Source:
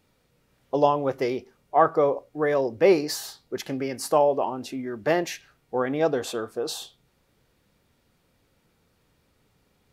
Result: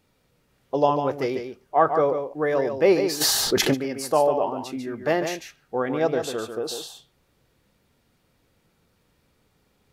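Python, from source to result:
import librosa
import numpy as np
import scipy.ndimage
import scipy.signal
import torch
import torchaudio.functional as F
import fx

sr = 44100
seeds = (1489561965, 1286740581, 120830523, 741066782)

y = x + 10.0 ** (-7.5 / 20.0) * np.pad(x, (int(146 * sr / 1000.0), 0))[:len(x)]
y = fx.env_flatten(y, sr, amount_pct=70, at=(3.2, 3.73), fade=0.02)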